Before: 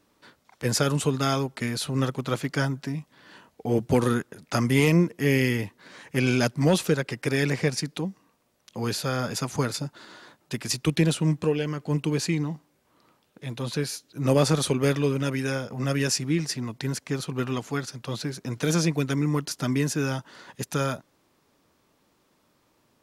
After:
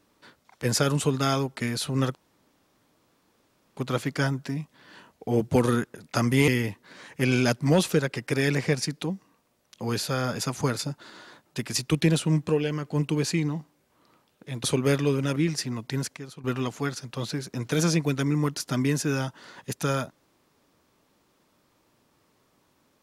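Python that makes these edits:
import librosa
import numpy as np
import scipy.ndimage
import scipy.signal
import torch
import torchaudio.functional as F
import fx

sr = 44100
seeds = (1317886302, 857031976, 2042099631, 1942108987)

y = fx.edit(x, sr, fx.insert_room_tone(at_s=2.15, length_s=1.62),
    fx.cut(start_s=4.86, length_s=0.57),
    fx.cut(start_s=13.59, length_s=1.02),
    fx.cut(start_s=15.33, length_s=0.94),
    fx.clip_gain(start_s=17.08, length_s=0.27, db=-11.5), tone=tone)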